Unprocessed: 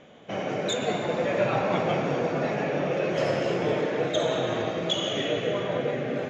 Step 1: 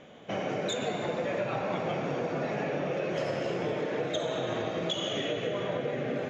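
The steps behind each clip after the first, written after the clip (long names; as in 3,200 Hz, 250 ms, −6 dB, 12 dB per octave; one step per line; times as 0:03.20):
downward compressor, threshold −28 dBFS, peak gain reduction 9 dB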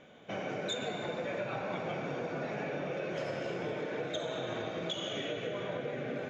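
hollow resonant body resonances 1,500/2,300/3,600 Hz, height 8 dB, ringing for 35 ms
level −5.5 dB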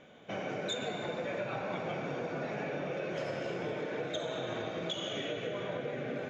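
no processing that can be heard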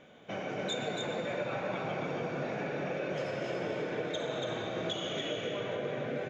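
single-tap delay 282 ms −4 dB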